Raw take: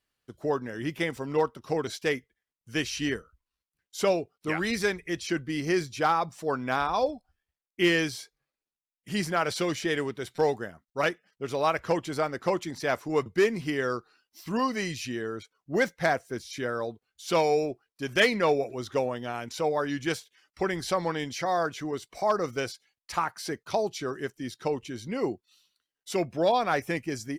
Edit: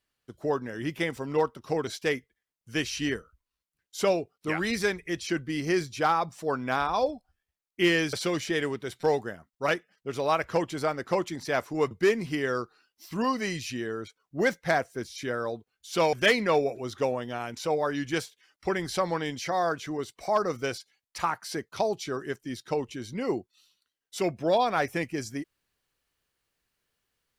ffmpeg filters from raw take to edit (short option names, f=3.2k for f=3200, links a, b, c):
-filter_complex "[0:a]asplit=3[a][b][c];[a]atrim=end=8.132[d];[b]atrim=start=9.478:end=17.482[e];[c]atrim=start=18.068[f];[d][e]acrossfade=d=0.004:c1=hsin:c2=hsin[g];[g][f]acrossfade=d=0.004:c1=hsin:c2=hsin"